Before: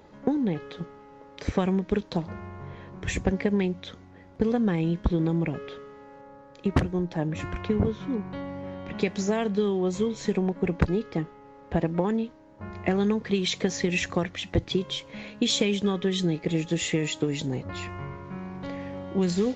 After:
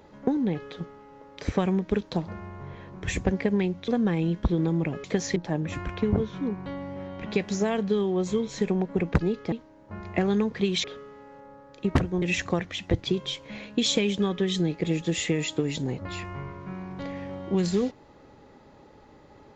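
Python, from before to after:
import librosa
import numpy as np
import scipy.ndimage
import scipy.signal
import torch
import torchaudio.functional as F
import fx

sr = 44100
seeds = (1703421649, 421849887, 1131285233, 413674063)

y = fx.edit(x, sr, fx.cut(start_s=3.88, length_s=0.61),
    fx.swap(start_s=5.65, length_s=1.38, other_s=13.54, other_length_s=0.32),
    fx.cut(start_s=11.19, length_s=1.03), tone=tone)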